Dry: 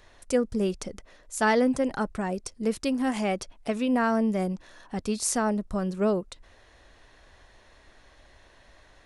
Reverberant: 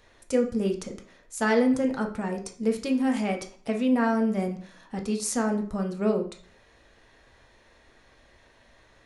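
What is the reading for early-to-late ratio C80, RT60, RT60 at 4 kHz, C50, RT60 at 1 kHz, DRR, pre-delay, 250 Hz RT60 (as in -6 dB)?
15.0 dB, 0.45 s, 0.40 s, 10.5 dB, 0.50 s, 2.0 dB, 3 ms, 0.50 s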